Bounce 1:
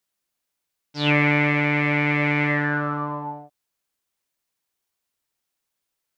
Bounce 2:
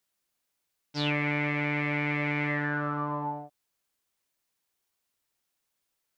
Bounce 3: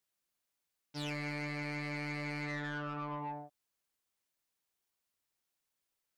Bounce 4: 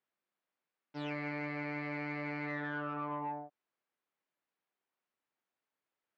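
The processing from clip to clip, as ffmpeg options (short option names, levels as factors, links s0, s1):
-af "acompressor=threshold=0.0398:ratio=3"
-af "asoftclip=type=tanh:threshold=0.0355,volume=0.531"
-af "highpass=190,lowpass=2100,volume=1.33"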